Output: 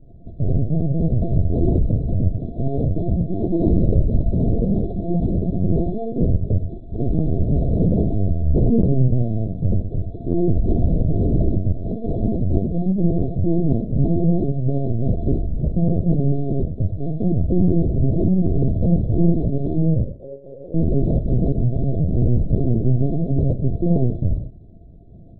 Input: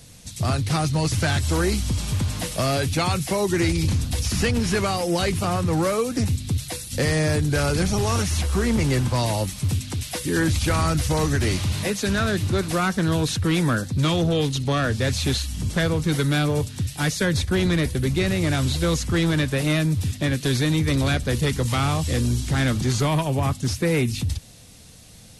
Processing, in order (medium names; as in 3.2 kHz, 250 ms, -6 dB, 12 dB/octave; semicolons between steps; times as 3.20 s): sorted samples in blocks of 64 samples; inverse Chebyshev band-stop 1.1–2.7 kHz, stop band 60 dB; tilt shelf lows +7.5 dB, about 940 Hz; hum notches 50/100/150/200/250/300 Hz; 3.52–4.22 s: comb 3.9 ms, depth 95%; 11.73–12.37 s: dynamic bell 150 Hz, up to -4 dB, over -35 dBFS, Q 2; 20.04–20.75 s: vowel filter e; Schroeder reverb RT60 0.49 s, combs from 32 ms, DRR 6 dB; LPC vocoder at 8 kHz pitch kept; loudspeaker Doppler distortion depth 0.13 ms